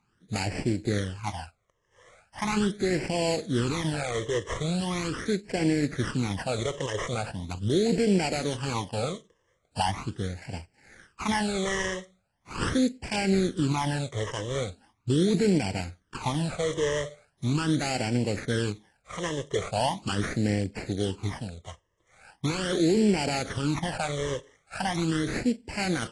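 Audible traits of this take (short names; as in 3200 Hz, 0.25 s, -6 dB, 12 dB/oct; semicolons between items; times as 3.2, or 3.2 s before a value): aliases and images of a low sample rate 3800 Hz, jitter 20%; phasing stages 12, 0.4 Hz, lowest notch 240–1200 Hz; AAC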